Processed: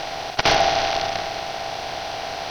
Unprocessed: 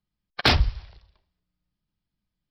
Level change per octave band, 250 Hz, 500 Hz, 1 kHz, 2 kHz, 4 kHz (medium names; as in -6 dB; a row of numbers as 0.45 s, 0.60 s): 0.0 dB, +13.0 dB, +12.0 dB, +5.5 dB, +4.0 dB